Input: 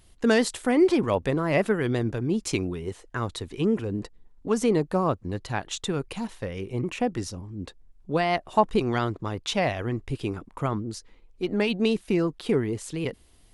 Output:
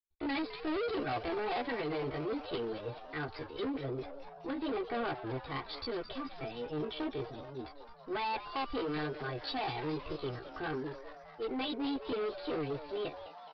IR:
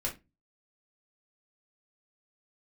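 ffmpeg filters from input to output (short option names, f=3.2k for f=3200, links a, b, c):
-filter_complex "[0:a]agate=range=-51dB:threshold=-48dB:ratio=16:detection=peak,aecho=1:1:3.3:0.98,acrossover=split=150[a][b];[a]acompressor=threshold=-29dB:ratio=6[c];[c][b]amix=inputs=2:normalize=0,flanger=delay=15.5:depth=3.9:speed=1.2,aresample=8000,volume=26.5dB,asoftclip=hard,volume=-26.5dB,aresample=44100,asplit=9[d][e][f][g][h][i][j][k][l];[e]adelay=213,afreqshift=120,volume=-12.5dB[m];[f]adelay=426,afreqshift=240,volume=-16.2dB[n];[g]adelay=639,afreqshift=360,volume=-20dB[o];[h]adelay=852,afreqshift=480,volume=-23.7dB[p];[i]adelay=1065,afreqshift=600,volume=-27.5dB[q];[j]adelay=1278,afreqshift=720,volume=-31.2dB[r];[k]adelay=1491,afreqshift=840,volume=-35dB[s];[l]adelay=1704,afreqshift=960,volume=-38.7dB[t];[d][m][n][o][p][q][r][s][t]amix=inputs=9:normalize=0,asetrate=55563,aresample=44100,atempo=0.793701,volume=-6dB"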